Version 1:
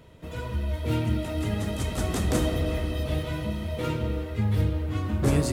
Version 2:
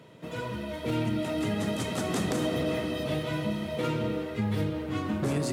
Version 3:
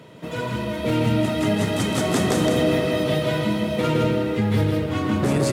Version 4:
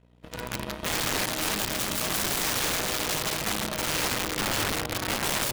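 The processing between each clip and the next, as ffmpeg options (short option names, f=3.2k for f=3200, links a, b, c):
-af "highpass=f=130:w=0.5412,highpass=f=130:w=1.3066,highshelf=f=11k:g=-7.5,alimiter=limit=-21.5dB:level=0:latency=1:release=81,volume=2dB"
-af "aecho=1:1:162:0.668,volume=7dB"
-af "aeval=exprs='val(0)+0.0224*(sin(2*PI*60*n/s)+sin(2*PI*2*60*n/s)/2+sin(2*PI*3*60*n/s)/3+sin(2*PI*4*60*n/s)/4+sin(2*PI*5*60*n/s)/5)':c=same,aeval=exprs='0.398*(cos(1*acos(clip(val(0)/0.398,-1,1)))-cos(1*PI/2))+0.0562*(cos(7*acos(clip(val(0)/0.398,-1,1)))-cos(7*PI/2))':c=same,aeval=exprs='(mod(10*val(0)+1,2)-1)/10':c=same"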